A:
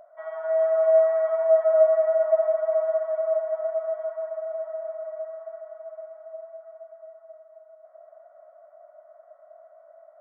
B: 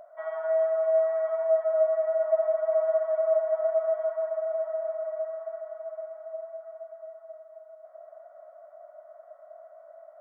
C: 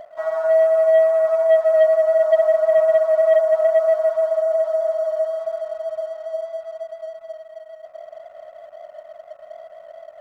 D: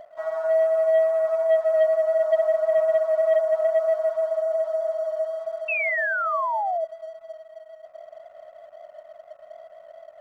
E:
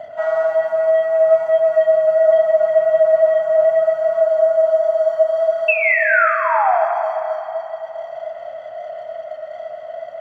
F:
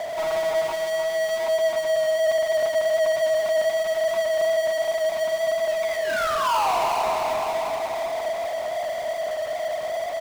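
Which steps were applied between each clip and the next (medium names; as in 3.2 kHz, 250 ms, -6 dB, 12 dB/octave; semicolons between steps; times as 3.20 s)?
gain riding within 4 dB 0.5 s; trim -2 dB
bass shelf 480 Hz +9 dB; waveshaping leveller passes 1; trim +3.5 dB
painted sound fall, 5.68–6.85 s, 620–2700 Hz -20 dBFS; trim -5 dB
compression, threshold -27 dBFS, peak gain reduction 11 dB; reverberation RT60 3.5 s, pre-delay 3 ms, DRR -0.5 dB; trim +2 dB
four-pole ladder low-pass 1.1 kHz, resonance 70%; power-law waveshaper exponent 0.35; delay 308 ms -8 dB; trim -9 dB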